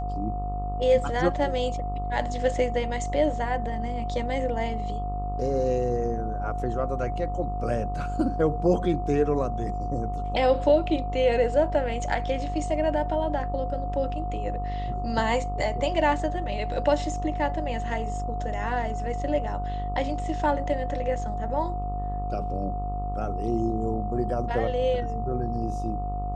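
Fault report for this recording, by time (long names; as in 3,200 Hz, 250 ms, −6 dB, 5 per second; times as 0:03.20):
mains buzz 50 Hz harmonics 26 −31 dBFS
whistle 720 Hz −32 dBFS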